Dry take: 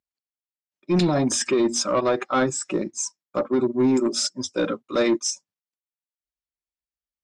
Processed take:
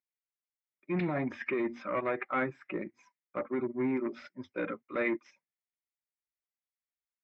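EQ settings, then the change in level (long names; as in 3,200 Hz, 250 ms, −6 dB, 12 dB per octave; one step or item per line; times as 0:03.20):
high-pass filter 42 Hz
transistor ladder low-pass 2,300 Hz, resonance 70%
high-frequency loss of the air 85 metres
0.0 dB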